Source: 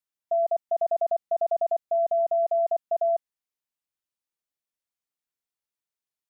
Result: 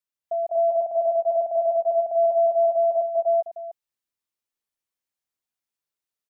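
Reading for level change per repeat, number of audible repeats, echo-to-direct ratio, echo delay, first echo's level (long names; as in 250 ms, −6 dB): repeats not evenly spaced, 3, 1.5 dB, 179 ms, −19.5 dB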